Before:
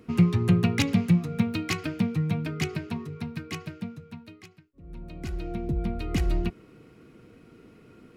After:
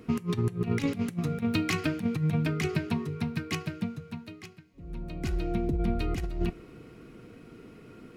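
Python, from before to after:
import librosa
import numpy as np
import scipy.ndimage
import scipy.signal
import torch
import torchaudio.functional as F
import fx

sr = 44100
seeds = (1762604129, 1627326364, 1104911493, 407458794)

y = fx.over_compress(x, sr, threshold_db=-27.0, ratio=-0.5)
y = fx.rev_double_slope(y, sr, seeds[0], early_s=0.28, late_s=4.1, knee_db=-21, drr_db=16.5)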